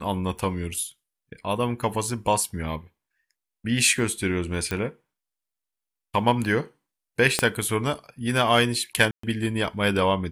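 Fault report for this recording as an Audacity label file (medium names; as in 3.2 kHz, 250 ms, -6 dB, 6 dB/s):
1.940000	1.940000	dropout 2.1 ms
4.710000	4.710000	pop -14 dBFS
7.390000	7.390000	pop -5 dBFS
9.110000	9.230000	dropout 124 ms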